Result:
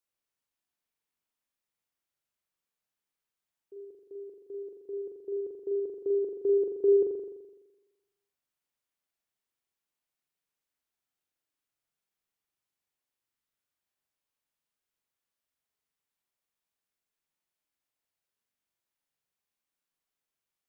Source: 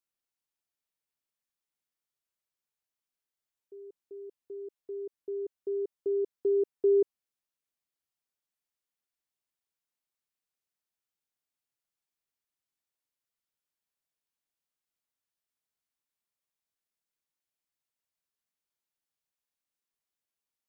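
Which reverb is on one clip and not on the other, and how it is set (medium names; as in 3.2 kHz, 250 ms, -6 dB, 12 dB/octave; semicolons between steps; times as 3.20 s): spring tank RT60 1.1 s, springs 42 ms, chirp 70 ms, DRR 0.5 dB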